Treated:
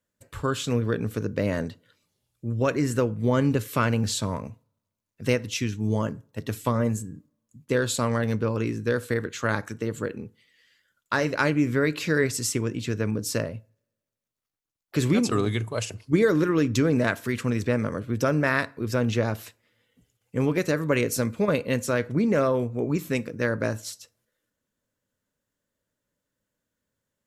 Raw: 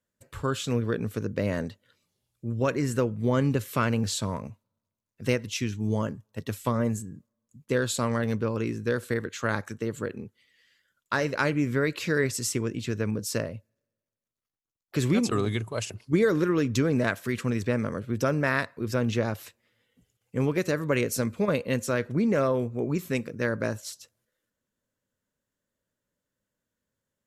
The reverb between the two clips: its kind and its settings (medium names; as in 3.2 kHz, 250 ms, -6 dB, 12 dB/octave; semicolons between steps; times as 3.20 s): FDN reverb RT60 0.4 s, low-frequency decay 1×, high-frequency decay 0.65×, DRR 16.5 dB; trim +2 dB